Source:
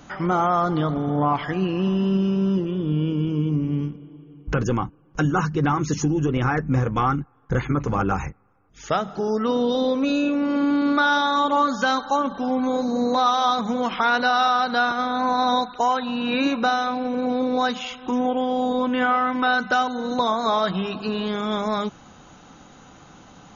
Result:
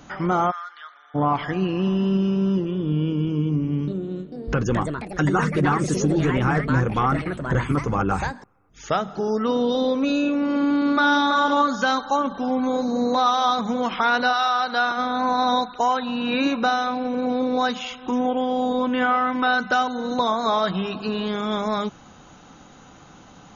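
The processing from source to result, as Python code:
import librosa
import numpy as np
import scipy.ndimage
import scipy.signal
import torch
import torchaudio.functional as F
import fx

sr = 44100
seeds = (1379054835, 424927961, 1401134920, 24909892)

y = fx.ladder_highpass(x, sr, hz=1400.0, resonance_pct=55, at=(0.5, 1.14), fade=0.02)
y = fx.echo_pitch(y, sr, ms=445, semitones=4, count=2, db_per_echo=-6.0, at=(3.43, 9.18))
y = fx.echo_throw(y, sr, start_s=10.63, length_s=0.65, ms=330, feedback_pct=15, wet_db=-7.5)
y = fx.highpass(y, sr, hz=fx.line((14.32, 960.0), (14.96, 280.0)), slope=6, at=(14.32, 14.96), fade=0.02)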